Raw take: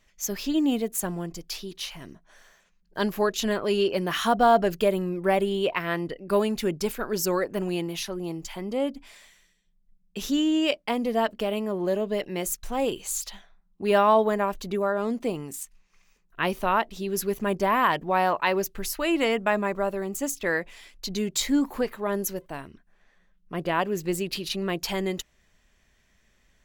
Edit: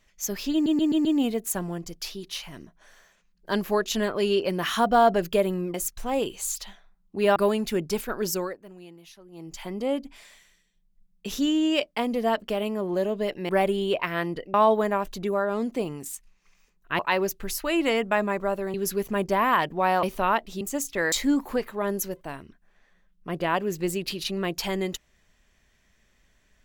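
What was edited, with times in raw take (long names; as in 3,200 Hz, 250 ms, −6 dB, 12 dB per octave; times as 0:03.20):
0:00.53: stutter 0.13 s, 5 plays
0:05.22–0:06.27: swap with 0:12.40–0:14.02
0:07.18–0:08.55: duck −17.5 dB, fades 0.33 s
0:16.47–0:17.05: swap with 0:18.34–0:20.09
0:20.60–0:21.37: remove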